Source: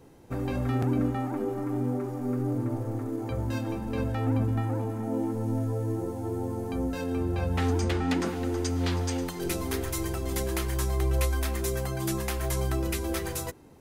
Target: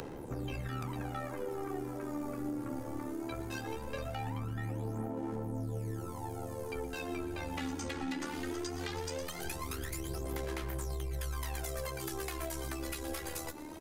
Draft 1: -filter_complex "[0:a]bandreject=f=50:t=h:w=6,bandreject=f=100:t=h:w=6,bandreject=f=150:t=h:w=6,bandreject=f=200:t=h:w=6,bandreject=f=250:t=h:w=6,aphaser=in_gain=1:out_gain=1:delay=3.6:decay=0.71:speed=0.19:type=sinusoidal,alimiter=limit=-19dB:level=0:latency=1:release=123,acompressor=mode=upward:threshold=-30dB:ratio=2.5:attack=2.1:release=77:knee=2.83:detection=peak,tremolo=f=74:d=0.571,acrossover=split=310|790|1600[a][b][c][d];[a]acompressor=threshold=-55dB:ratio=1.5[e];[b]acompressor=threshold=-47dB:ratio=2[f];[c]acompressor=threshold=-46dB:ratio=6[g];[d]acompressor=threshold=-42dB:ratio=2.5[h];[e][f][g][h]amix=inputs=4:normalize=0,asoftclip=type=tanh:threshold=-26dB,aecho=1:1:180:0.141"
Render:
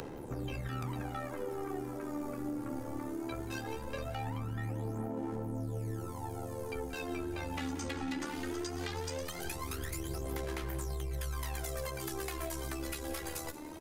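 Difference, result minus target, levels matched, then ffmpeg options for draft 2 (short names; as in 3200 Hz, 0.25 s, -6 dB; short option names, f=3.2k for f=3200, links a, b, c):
echo 61 ms late
-filter_complex "[0:a]bandreject=f=50:t=h:w=6,bandreject=f=100:t=h:w=6,bandreject=f=150:t=h:w=6,bandreject=f=200:t=h:w=6,bandreject=f=250:t=h:w=6,aphaser=in_gain=1:out_gain=1:delay=3.6:decay=0.71:speed=0.19:type=sinusoidal,alimiter=limit=-19dB:level=0:latency=1:release=123,acompressor=mode=upward:threshold=-30dB:ratio=2.5:attack=2.1:release=77:knee=2.83:detection=peak,tremolo=f=74:d=0.571,acrossover=split=310|790|1600[a][b][c][d];[a]acompressor=threshold=-55dB:ratio=1.5[e];[b]acompressor=threshold=-47dB:ratio=2[f];[c]acompressor=threshold=-46dB:ratio=6[g];[d]acompressor=threshold=-42dB:ratio=2.5[h];[e][f][g][h]amix=inputs=4:normalize=0,asoftclip=type=tanh:threshold=-26dB,aecho=1:1:119:0.141"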